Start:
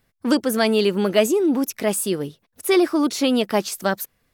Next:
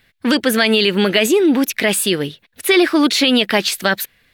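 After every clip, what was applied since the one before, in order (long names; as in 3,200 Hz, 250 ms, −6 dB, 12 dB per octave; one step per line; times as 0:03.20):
flat-topped bell 2,600 Hz +11 dB
boost into a limiter +8.5 dB
level −3 dB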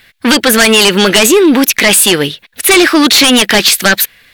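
tilt shelving filter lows −4 dB, about 640 Hz
sine wavefolder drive 10 dB, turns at 1 dBFS
level −3.5 dB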